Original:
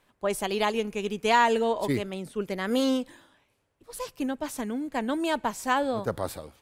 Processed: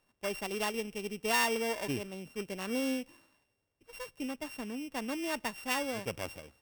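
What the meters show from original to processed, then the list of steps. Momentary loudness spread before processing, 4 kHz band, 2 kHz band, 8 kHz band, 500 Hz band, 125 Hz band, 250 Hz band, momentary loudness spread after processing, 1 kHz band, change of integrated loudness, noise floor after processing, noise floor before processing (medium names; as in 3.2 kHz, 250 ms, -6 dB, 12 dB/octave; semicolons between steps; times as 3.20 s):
11 LU, -4.0 dB, -4.5 dB, -1.5 dB, -9.0 dB, -8.0 dB, -8.0 dB, 12 LU, -11.0 dB, -7.0 dB, -80 dBFS, -72 dBFS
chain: sorted samples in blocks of 16 samples; trim -8 dB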